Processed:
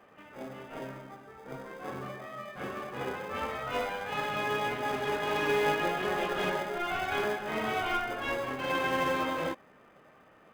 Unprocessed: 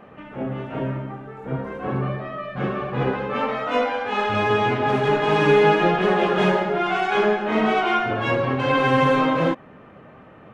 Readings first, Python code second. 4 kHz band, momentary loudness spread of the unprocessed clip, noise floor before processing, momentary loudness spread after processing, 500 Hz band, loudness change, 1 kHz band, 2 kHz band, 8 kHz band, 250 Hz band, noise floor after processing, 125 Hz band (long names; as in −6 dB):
−7.5 dB, 13 LU, −46 dBFS, 15 LU, −12.5 dB, −11.0 dB, −10.5 dB, −8.5 dB, can't be measured, −14.5 dB, −59 dBFS, −18.0 dB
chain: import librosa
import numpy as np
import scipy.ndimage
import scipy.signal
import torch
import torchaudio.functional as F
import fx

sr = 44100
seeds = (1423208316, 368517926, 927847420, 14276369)

p1 = fx.highpass(x, sr, hz=780.0, slope=6)
p2 = fx.sample_hold(p1, sr, seeds[0], rate_hz=1400.0, jitter_pct=0)
p3 = p1 + F.gain(torch.from_numpy(p2), -9.0).numpy()
y = F.gain(torch.from_numpy(p3), -8.0).numpy()